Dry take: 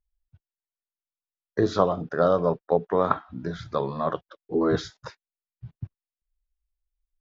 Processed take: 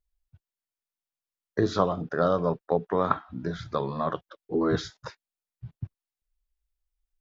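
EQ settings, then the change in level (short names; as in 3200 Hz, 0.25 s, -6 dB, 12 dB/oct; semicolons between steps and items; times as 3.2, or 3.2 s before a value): dynamic EQ 570 Hz, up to -4 dB, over -28 dBFS, Q 0.89; 0.0 dB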